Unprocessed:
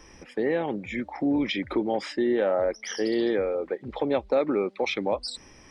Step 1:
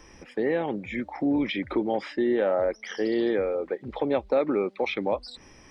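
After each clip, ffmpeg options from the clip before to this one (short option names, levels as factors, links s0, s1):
-filter_complex "[0:a]acrossover=split=3900[s0][s1];[s1]acompressor=threshold=0.00158:ratio=4:attack=1:release=60[s2];[s0][s2]amix=inputs=2:normalize=0"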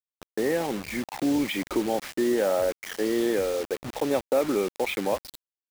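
-af "acrusher=bits=5:mix=0:aa=0.000001"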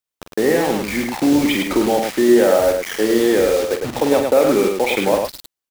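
-af "aecho=1:1:46.65|105:0.398|0.562,volume=2.66"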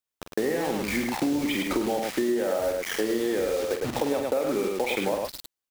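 -af "acompressor=threshold=0.1:ratio=6,volume=0.708"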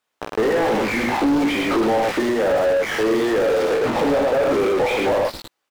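-filter_complex "[0:a]asplit=2[s0][s1];[s1]adelay=18,volume=0.596[s2];[s0][s2]amix=inputs=2:normalize=0,asplit=2[s3][s4];[s4]highpass=f=720:p=1,volume=28.2,asoftclip=type=tanh:threshold=0.316[s5];[s3][s5]amix=inputs=2:normalize=0,lowpass=f=1100:p=1,volume=0.501"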